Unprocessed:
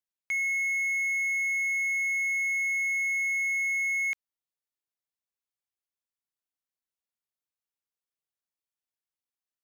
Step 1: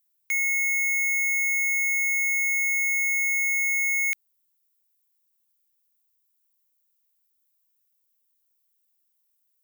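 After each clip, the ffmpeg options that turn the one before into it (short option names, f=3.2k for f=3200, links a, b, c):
-af "aemphasis=mode=production:type=riaa"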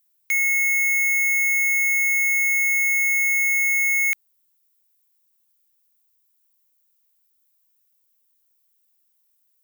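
-af "volume=22.5dB,asoftclip=hard,volume=-22.5dB,volume=5dB"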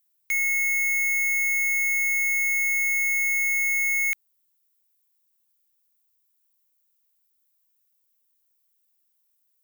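-af "aeval=exprs='0.141*(cos(1*acos(clip(val(0)/0.141,-1,1)))-cos(1*PI/2))+0.00501*(cos(8*acos(clip(val(0)/0.141,-1,1)))-cos(8*PI/2))':c=same,volume=-3.5dB"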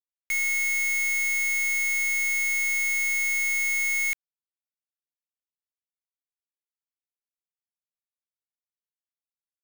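-af "acrusher=bits=6:dc=4:mix=0:aa=0.000001,volume=-2.5dB"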